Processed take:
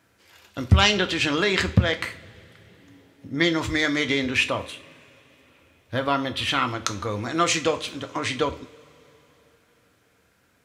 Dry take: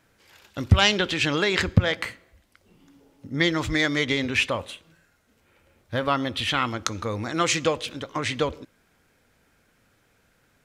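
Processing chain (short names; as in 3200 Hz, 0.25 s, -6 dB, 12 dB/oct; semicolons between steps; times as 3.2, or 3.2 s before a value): HPF 66 Hz; on a send: reverb, pre-delay 3 ms, DRR 6.5 dB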